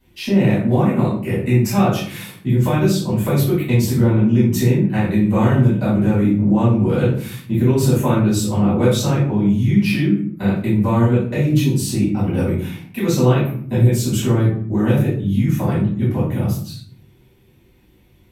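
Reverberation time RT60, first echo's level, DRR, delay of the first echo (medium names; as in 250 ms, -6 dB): 0.55 s, no echo, -12.0 dB, no echo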